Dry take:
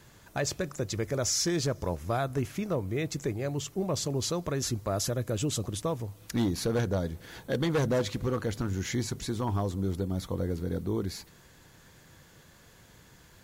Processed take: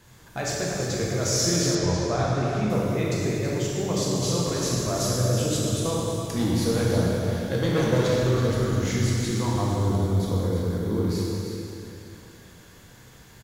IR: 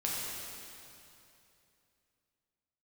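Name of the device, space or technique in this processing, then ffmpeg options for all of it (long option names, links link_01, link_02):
cave: -filter_complex "[0:a]aecho=1:1:328:0.316[link_01];[1:a]atrim=start_sample=2205[link_02];[link_01][link_02]afir=irnorm=-1:irlink=0,asettb=1/sr,asplit=3[link_03][link_04][link_05];[link_03]atrim=end=1.754[link_06];[link_04]atrim=start=1.75:end=2.7,asetpts=PTS-STARTPTS,afade=type=in:duration=0.004:curve=qsin,afade=type=out:start_time=0.946:duration=0.004:curve=qsin,lowpass=5900[link_07];[link_05]atrim=start=2.696[link_08];[link_06][link_07]acrossfade=duration=0.004:curve1=hsin:curve2=qsin[link_09];[link_09][link_08]acrossfade=duration=0.004:curve1=qsin:curve2=hsin"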